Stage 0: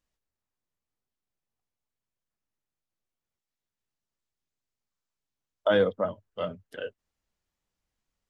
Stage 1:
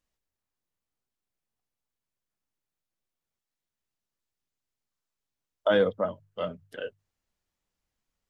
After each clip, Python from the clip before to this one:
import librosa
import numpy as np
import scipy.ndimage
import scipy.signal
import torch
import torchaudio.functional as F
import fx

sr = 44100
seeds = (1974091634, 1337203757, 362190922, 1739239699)

y = fx.hum_notches(x, sr, base_hz=50, count=3)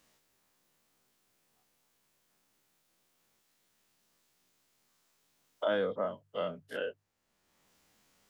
y = fx.spec_dilate(x, sr, span_ms=60)
y = fx.band_squash(y, sr, depth_pct=70)
y = y * librosa.db_to_amplitude(-8.0)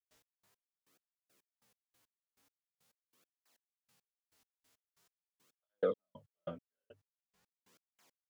y = fx.step_gate(x, sr, bpm=139, pattern='.x..x...x...x.', floor_db=-60.0, edge_ms=4.5)
y = fx.flanger_cancel(y, sr, hz=0.44, depth_ms=6.4)
y = y * librosa.db_to_amplitude(3.5)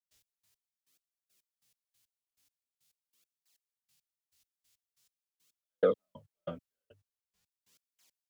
y = fx.band_widen(x, sr, depth_pct=40)
y = y * librosa.db_to_amplitude(2.5)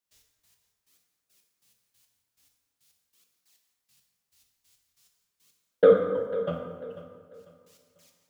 y = fx.echo_feedback(x, sr, ms=495, feedback_pct=31, wet_db=-15.0)
y = fx.rev_plate(y, sr, seeds[0], rt60_s=1.6, hf_ratio=0.55, predelay_ms=0, drr_db=1.5)
y = y * librosa.db_to_amplitude(7.0)